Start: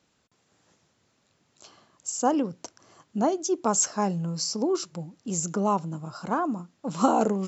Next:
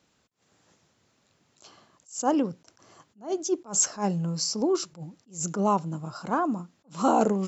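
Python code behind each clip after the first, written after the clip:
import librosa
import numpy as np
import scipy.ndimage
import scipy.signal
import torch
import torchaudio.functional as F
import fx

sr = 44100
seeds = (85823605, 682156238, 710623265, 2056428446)

y = fx.attack_slew(x, sr, db_per_s=210.0)
y = y * librosa.db_to_amplitude(1.0)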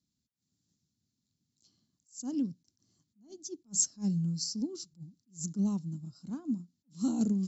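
y = fx.curve_eq(x, sr, hz=(250.0, 500.0, 1100.0, 2700.0, 4300.0, 6800.0), db=(0, -23, -26, -18, -2, -4))
y = fx.upward_expand(y, sr, threshold_db=-45.0, expansion=1.5)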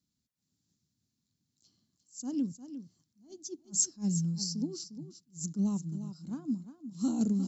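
y = x + 10.0 ** (-11.5 / 20.0) * np.pad(x, (int(353 * sr / 1000.0), 0))[:len(x)]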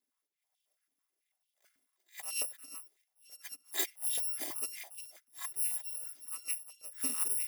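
y = fx.bit_reversed(x, sr, seeds[0], block=256)
y = fx.dynamic_eq(y, sr, hz=5800.0, q=1.3, threshold_db=-49.0, ratio=4.0, max_db=-4)
y = fx.filter_held_highpass(y, sr, hz=9.1, low_hz=260.0, high_hz=3100.0)
y = y * librosa.db_to_amplitude(-4.0)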